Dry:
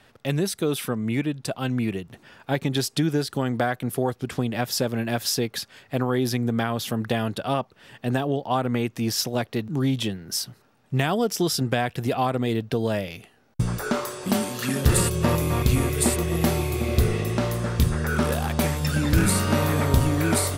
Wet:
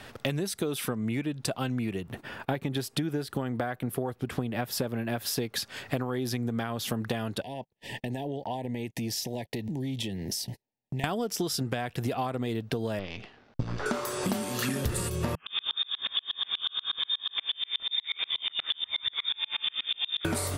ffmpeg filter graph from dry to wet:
ffmpeg -i in.wav -filter_complex "[0:a]asettb=1/sr,asplit=3[link_01][link_02][link_03];[link_01]atrim=end=2.024[link_04];[link_02]atrim=start=2.02:end=5.38,asetpts=PTS-STARTPTS,afade=type=in:duration=0.004:curve=qsin,afade=type=out:start_time=3.356:duration=0.004:curve=qsin,agate=range=-18dB:threshold=-54dB:ratio=16:release=100:detection=peak,equalizer=frequency=6100:width=0.86:gain=-7.5[link_05];[link_03]atrim=start=5.376[link_06];[link_04][link_05]acrossfade=duration=0.004:curve1=hsin:curve2=qsin[link_07];[link_07][link_06]acrossfade=duration=0.004:curve1=qsin:curve2=hsin,asettb=1/sr,asplit=3[link_08][link_09][link_10];[link_08]atrim=end=7.414[link_11];[link_09]atrim=start=7.41:end=11.04,asetpts=PTS-STARTPTS,afade=type=in:duration=0.004:curve=qsin,afade=type=out:start_time=3.626:duration=0.004:curve=qsin,acompressor=threshold=-39dB:ratio=6:attack=3.2:release=140:knee=1:detection=peak,asuperstop=centerf=1300:order=12:qfactor=1.8,agate=range=-38dB:threshold=-51dB:ratio=16:release=100:detection=peak[link_12];[link_10]atrim=start=11.036[link_13];[link_11][link_12]acrossfade=duration=0.004:curve1=hsin:curve2=qsin[link_14];[link_14][link_13]acrossfade=duration=0.004:curve1=qsin:curve2=hsin,asettb=1/sr,asplit=3[link_15][link_16][link_17];[link_15]atrim=end=12.994[link_18];[link_16]atrim=start=12.99:end=13.86,asetpts=PTS-STARTPTS,afade=type=in:duration=0.004:curve=qsin,afade=type=out:start_time=0.866:duration=0.004:curve=qsin,aeval=exprs='if(lt(val(0),0),0.251*val(0),val(0))':channel_layout=same,lowpass=frequency=5000:width=0.5412,lowpass=frequency=5000:width=1.3066[link_19];[link_17]atrim=start=13.856[link_20];[link_18][link_19]acrossfade=duration=0.004:curve1=hsin:curve2=qsin[link_21];[link_21][link_20]acrossfade=duration=0.004:curve1=qsin:curve2=hsin,asettb=1/sr,asplit=3[link_22][link_23][link_24];[link_22]atrim=end=15.354[link_25];[link_23]atrim=start=15.35:end=20.25,asetpts=PTS-STARTPTS,afade=type=in:duration=0.004:curve=qsin,afade=type=out:start_time=4.896:duration=0.004:curve=qsin,acrossover=split=900[link_26][link_27];[link_26]adelay=110[link_28];[link_28][link_27]amix=inputs=2:normalize=0,atrim=end_sample=216090,lowpass=frequency=3100:width_type=q:width=0.5098,lowpass=frequency=3100:width_type=q:width=0.6013,lowpass=frequency=3100:width_type=q:width=0.9,lowpass=frequency=3100:width_type=q:width=2.563,afreqshift=-3700,aeval=exprs='val(0)*pow(10,-36*if(lt(mod(-8.3*n/s,1),2*abs(-8.3)/1000),1-mod(-8.3*n/s,1)/(2*abs(-8.3)/1000),(mod(-8.3*n/s,1)-2*abs(-8.3)/1000)/(1-2*abs(-8.3)/1000))/20)':channel_layout=same[link_29];[link_24]atrim=start=20.246[link_30];[link_25][link_29]acrossfade=duration=0.004:curve1=hsin:curve2=qsin[link_31];[link_31][link_30]acrossfade=duration=0.004:curve1=qsin:curve2=hsin,equalizer=frequency=160:width_type=o:width=0.22:gain=-3,acompressor=threshold=-36dB:ratio=12,volume=9dB" out.wav

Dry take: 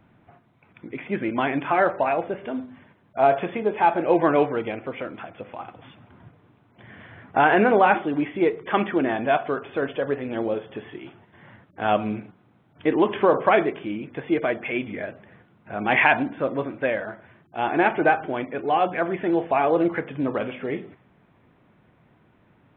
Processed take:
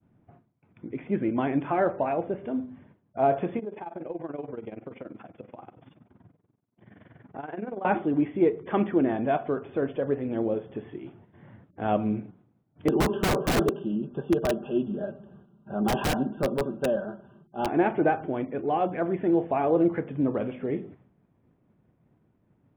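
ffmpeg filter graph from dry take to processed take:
ffmpeg -i in.wav -filter_complex "[0:a]asettb=1/sr,asplit=3[link_01][link_02][link_03];[link_01]atrim=end=3.594[link_04];[link_02]atrim=start=3.59:end=7.85,asetpts=PTS-STARTPTS,afade=type=in:duration=0.004:curve=qsin,afade=type=out:start_time=4.256:duration=0.004:curve=qsin,highpass=120,tremolo=f=21:d=0.824,acompressor=threshold=-32dB:ratio=3:attack=3.2:release=140:knee=1:detection=peak[link_05];[link_03]atrim=start=7.846[link_06];[link_04][link_05]acrossfade=duration=0.004:curve1=hsin:curve2=qsin[link_07];[link_07][link_06]acrossfade=duration=0.004:curve1=qsin:curve2=hsin,asettb=1/sr,asplit=3[link_08][link_09][link_10];[link_08]atrim=end=12.884[link_11];[link_09]atrim=start=12.88:end=17.67,asetpts=PTS-STARTPTS,afade=type=in:duration=0.004:curve=qsin,afade=type=out:start_time=4.786:duration=0.004:curve=qsin,asuperstop=centerf=2100:order=12:qfactor=2,aecho=1:1:5.1:0.74,atrim=end_sample=211239,aeval=exprs='(mod(4.22*val(0)+1,2)-1)/4.22':channel_layout=same[link_12];[link_10]atrim=start=17.666[link_13];[link_11][link_12]acrossfade=duration=0.004:curve1=hsin:curve2=qsin[link_14];[link_14][link_13]acrossfade=duration=0.004:curve1=qsin:curve2=hsin,lowshelf=frequency=280:gain=-4.5,agate=range=-33dB:threshold=-54dB:ratio=3:detection=peak,tiltshelf=frequency=640:gain=9.5,volume=-3.5dB" out.wav

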